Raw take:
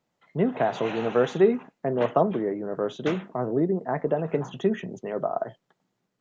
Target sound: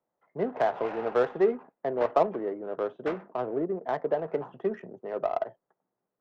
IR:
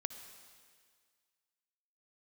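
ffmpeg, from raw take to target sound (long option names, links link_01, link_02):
-filter_complex "[0:a]acrossover=split=380 2500:gain=0.2 1 0.224[link_01][link_02][link_03];[link_01][link_02][link_03]amix=inputs=3:normalize=0,adynamicsmooth=sensitivity=2:basefreq=1200"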